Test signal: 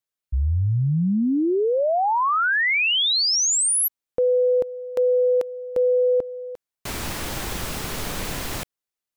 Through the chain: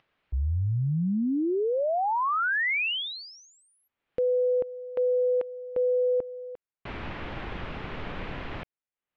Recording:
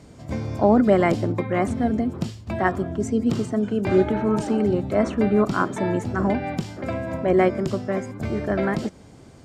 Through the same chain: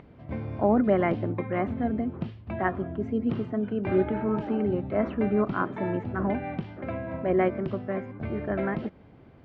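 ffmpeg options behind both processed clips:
ffmpeg -i in.wav -af "lowpass=frequency=2900:width=0.5412,lowpass=frequency=2900:width=1.3066,acompressor=mode=upward:threshold=-48dB:ratio=2.5:release=423:knee=2.83:detection=peak,volume=-5.5dB" out.wav

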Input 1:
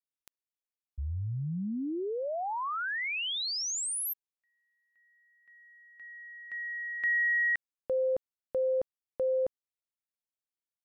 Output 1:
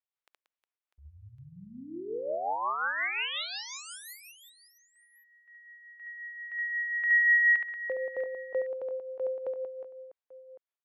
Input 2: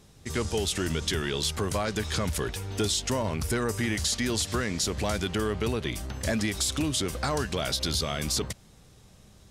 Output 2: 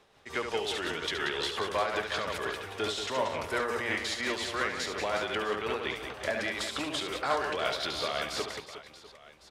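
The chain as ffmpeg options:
ffmpeg -i in.wav -filter_complex "[0:a]acrossover=split=420 3500:gain=0.1 1 0.141[link_01][link_02][link_03];[link_01][link_02][link_03]amix=inputs=3:normalize=0,aecho=1:1:70|182|361.2|647.9|1107:0.631|0.398|0.251|0.158|0.1,tremolo=f=5.6:d=0.4,volume=2.5dB" out.wav

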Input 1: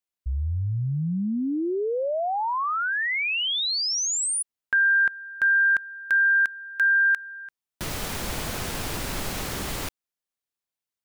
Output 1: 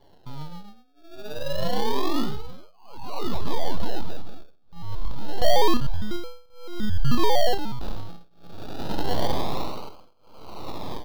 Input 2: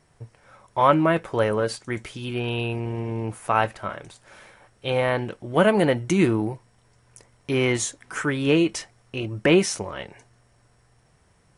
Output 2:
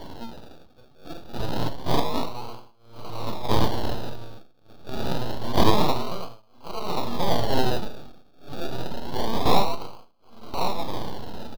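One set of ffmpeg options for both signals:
ffmpeg -i in.wav -filter_complex "[0:a]aeval=exprs='val(0)+0.5*0.0501*sgn(val(0))':channel_layout=same,afftdn=noise_reduction=33:noise_floor=-34,highpass=70,dynaudnorm=framelen=750:gausssize=5:maxgain=5dB,aeval=exprs='abs(val(0))':channel_layout=same,equalizer=frequency=1300:width=6.2:gain=8.5,asplit=2[link_01][link_02];[link_02]adelay=34,volume=-6dB[link_03];[link_01][link_03]amix=inputs=2:normalize=0,asplit=2[link_04][link_05];[link_05]aecho=0:1:1084|2168|3252|4336|5420:0.631|0.246|0.096|0.0374|0.0146[link_06];[link_04][link_06]amix=inputs=2:normalize=0,acrossover=split=4400[link_07][link_08];[link_08]acompressor=threshold=-40dB:ratio=4:attack=1:release=60[link_09];[link_07][link_09]amix=inputs=2:normalize=0,acrusher=samples=34:mix=1:aa=0.000001:lfo=1:lforange=20.4:lforate=0.27,tremolo=f=0.54:d=0.99,equalizer=frequency=1000:width_type=o:width=1:gain=8,equalizer=frequency=2000:width_type=o:width=1:gain=-9,equalizer=frequency=4000:width_type=o:width=1:gain=11,equalizer=frequency=8000:width_type=o:width=1:gain=-10,volume=-3dB" out.wav

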